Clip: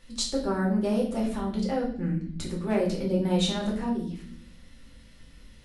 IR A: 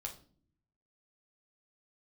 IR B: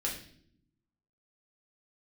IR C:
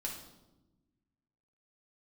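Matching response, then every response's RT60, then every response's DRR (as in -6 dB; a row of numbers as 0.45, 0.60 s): B; not exponential, 0.60 s, 1.0 s; 1.0, -3.5, -2.0 dB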